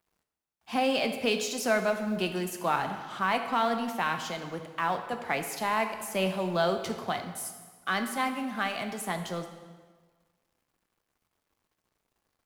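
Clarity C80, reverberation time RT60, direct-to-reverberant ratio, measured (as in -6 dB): 9.5 dB, 1.5 s, 6.0 dB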